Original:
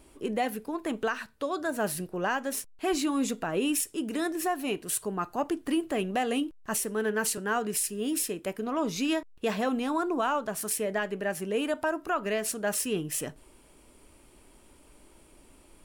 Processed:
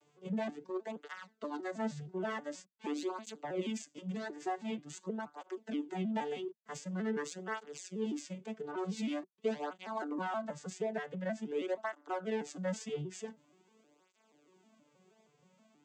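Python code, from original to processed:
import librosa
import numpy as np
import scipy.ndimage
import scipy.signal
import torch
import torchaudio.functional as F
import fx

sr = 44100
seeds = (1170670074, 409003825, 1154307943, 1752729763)

p1 = fx.vocoder_arp(x, sr, chord='major triad', root=50, every_ms=159)
p2 = fx.low_shelf(p1, sr, hz=290.0, db=-10.0)
p3 = 10.0 ** (-36.5 / 20.0) * np.tanh(p2 / 10.0 ** (-36.5 / 20.0))
p4 = p2 + (p3 * librosa.db_to_amplitude(-7.0))
p5 = fx.high_shelf(p4, sr, hz=4700.0, db=8.0)
p6 = fx.flanger_cancel(p5, sr, hz=0.46, depth_ms=3.9)
y = p6 * librosa.db_to_amplitude(-2.5)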